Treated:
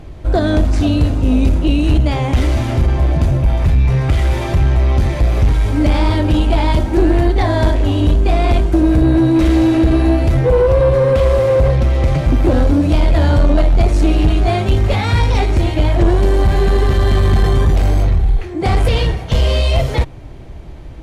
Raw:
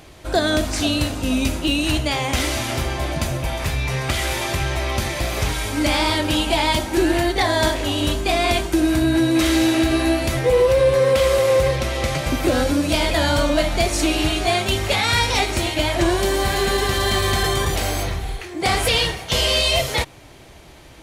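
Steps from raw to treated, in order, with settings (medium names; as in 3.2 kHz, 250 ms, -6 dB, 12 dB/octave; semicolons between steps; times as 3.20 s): tilt EQ -3.5 dB/octave; saturation -7 dBFS, distortion -15 dB; trim +1.5 dB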